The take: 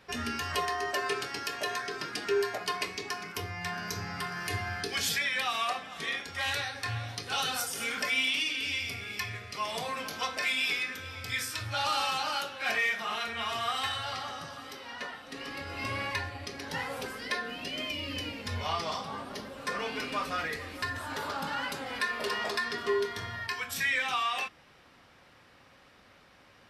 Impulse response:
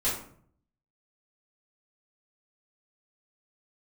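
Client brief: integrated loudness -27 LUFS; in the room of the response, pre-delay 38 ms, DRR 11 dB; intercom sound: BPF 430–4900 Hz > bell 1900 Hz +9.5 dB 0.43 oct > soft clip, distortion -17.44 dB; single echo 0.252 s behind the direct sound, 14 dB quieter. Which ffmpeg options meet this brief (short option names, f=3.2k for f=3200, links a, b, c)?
-filter_complex "[0:a]aecho=1:1:252:0.2,asplit=2[a][b];[1:a]atrim=start_sample=2205,adelay=38[c];[b][c]afir=irnorm=-1:irlink=0,volume=-19.5dB[d];[a][d]amix=inputs=2:normalize=0,highpass=430,lowpass=4.9k,equalizer=f=1.9k:t=o:w=0.43:g=9.5,asoftclip=threshold=-19dB,volume=2.5dB"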